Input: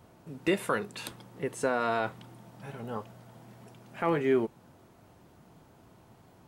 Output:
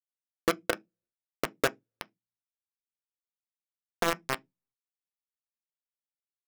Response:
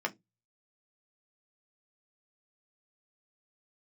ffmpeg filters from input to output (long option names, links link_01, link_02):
-filter_complex "[0:a]lowpass=frequency=520:width_type=q:width=4.9,acrossover=split=84|230[link_01][link_02][link_03];[link_01]acompressor=threshold=-59dB:ratio=4[link_04];[link_02]acompressor=threshold=-48dB:ratio=4[link_05];[link_03]acompressor=threshold=-30dB:ratio=4[link_06];[link_04][link_05][link_06]amix=inputs=3:normalize=0,acrusher=bits=3:mix=0:aa=0.000001,asplit=2[link_07][link_08];[1:a]atrim=start_sample=2205[link_09];[link_08][link_09]afir=irnorm=-1:irlink=0,volume=-10.5dB[link_10];[link_07][link_10]amix=inputs=2:normalize=0"